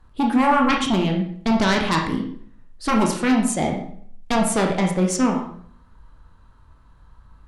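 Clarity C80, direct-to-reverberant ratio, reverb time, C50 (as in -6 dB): 9.5 dB, 0.5 dB, 0.60 s, 5.5 dB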